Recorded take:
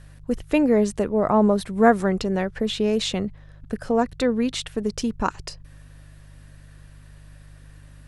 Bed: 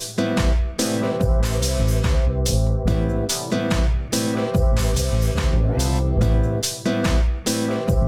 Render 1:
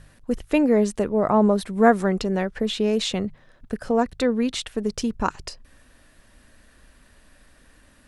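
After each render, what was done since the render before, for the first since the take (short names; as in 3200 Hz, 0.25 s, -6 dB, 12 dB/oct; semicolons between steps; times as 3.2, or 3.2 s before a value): de-hum 50 Hz, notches 3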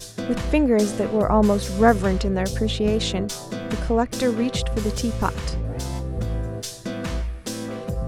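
add bed -8.5 dB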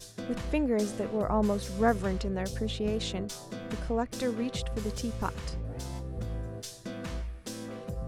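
gain -9.5 dB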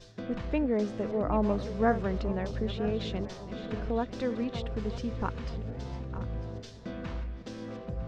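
regenerating reverse delay 0.476 s, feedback 59%, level -12 dB; air absorption 190 m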